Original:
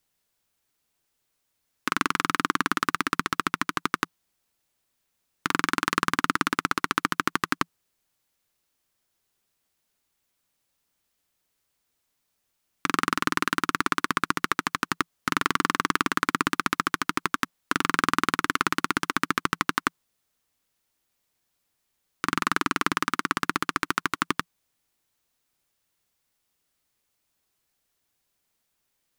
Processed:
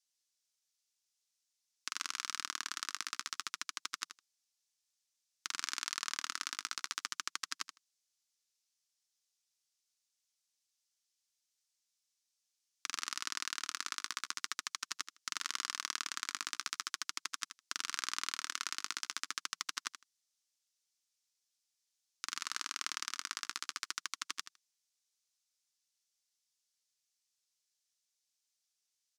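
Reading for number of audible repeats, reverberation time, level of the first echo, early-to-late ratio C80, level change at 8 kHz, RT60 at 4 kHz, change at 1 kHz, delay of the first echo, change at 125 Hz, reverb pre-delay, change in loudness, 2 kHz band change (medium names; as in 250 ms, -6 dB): 2, no reverb, -11.0 dB, no reverb, -3.0 dB, no reverb, -19.5 dB, 79 ms, under -35 dB, no reverb, -13.0 dB, -16.0 dB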